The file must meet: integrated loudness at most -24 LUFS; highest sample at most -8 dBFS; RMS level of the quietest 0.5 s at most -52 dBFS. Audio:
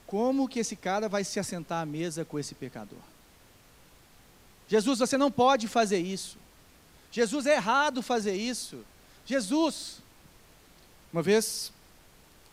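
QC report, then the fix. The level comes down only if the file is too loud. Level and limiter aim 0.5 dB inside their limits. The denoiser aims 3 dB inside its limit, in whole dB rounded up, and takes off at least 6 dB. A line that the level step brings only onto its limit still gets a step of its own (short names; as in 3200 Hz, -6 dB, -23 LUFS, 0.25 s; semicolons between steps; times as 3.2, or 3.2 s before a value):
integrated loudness -28.5 LUFS: OK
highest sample -11.5 dBFS: OK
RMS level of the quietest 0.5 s -57 dBFS: OK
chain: none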